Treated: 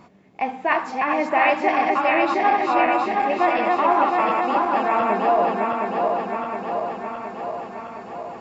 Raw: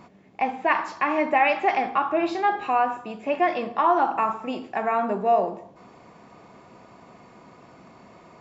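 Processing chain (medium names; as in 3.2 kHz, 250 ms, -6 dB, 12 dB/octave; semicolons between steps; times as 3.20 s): backward echo that repeats 358 ms, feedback 80%, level -2 dB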